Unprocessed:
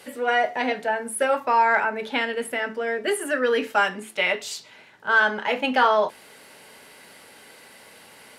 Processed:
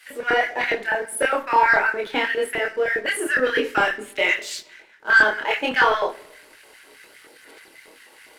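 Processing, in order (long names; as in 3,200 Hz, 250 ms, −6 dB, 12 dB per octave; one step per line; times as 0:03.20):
high-pass filter 220 Hz
auto-filter high-pass square 4.9 Hz 330–1,700 Hz
leveller curve on the samples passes 1
multi-voice chorus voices 4, 1.5 Hz, delay 26 ms, depth 3 ms
rectangular room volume 2,800 cubic metres, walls furnished, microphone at 0.56 metres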